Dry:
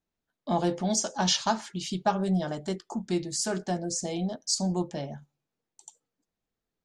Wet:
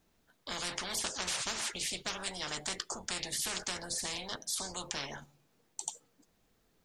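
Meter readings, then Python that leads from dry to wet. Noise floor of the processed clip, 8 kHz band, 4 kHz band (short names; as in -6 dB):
-73 dBFS, -3.5 dB, -3.0 dB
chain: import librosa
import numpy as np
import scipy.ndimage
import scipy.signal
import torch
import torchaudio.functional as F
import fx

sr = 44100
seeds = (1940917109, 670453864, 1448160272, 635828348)

y = fx.spectral_comp(x, sr, ratio=10.0)
y = y * librosa.db_to_amplitude(-2.5)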